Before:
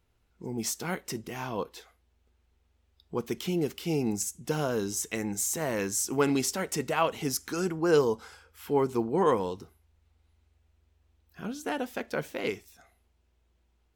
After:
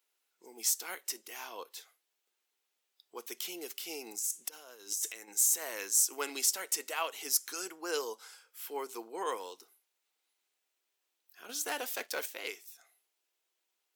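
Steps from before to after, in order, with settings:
0:04.19–0:05.28: compressor whose output falls as the input rises −39 dBFS, ratio −1
high-pass filter 310 Hz 24 dB per octave
0:11.49–0:12.26: leveller curve on the samples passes 2
spectral tilt +4 dB per octave
level −8.5 dB

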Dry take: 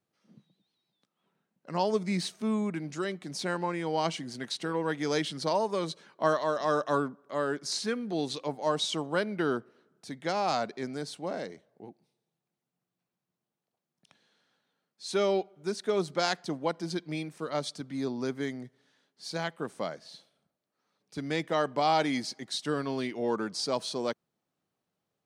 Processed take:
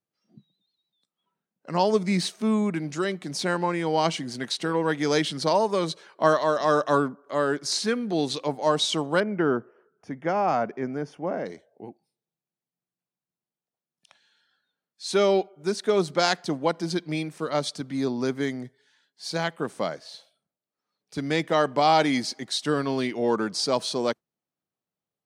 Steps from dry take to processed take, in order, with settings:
noise reduction from a noise print of the clip's start 14 dB
0:09.20–0:11.46: moving average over 11 samples
level +6 dB

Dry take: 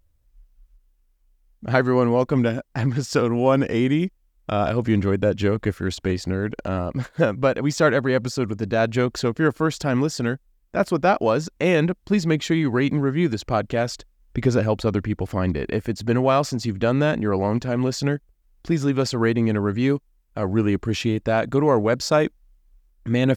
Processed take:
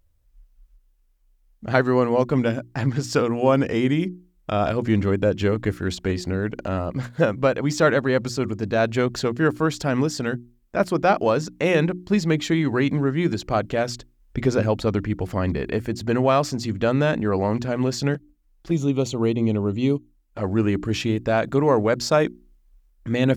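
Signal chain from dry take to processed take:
mains-hum notches 60/120/180/240/300/360 Hz
0:18.14–0:20.44: flanger swept by the level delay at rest 7.9 ms, full sweep at −21 dBFS

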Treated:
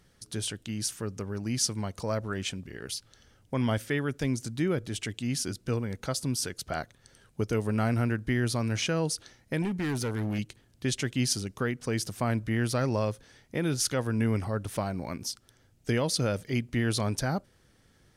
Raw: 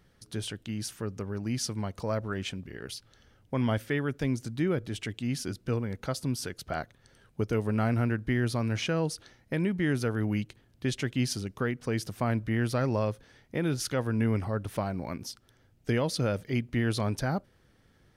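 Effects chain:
parametric band 7,900 Hz +8 dB 1.6 octaves
0:09.62–0:10.39: hard clipping −26.5 dBFS, distortion −20 dB

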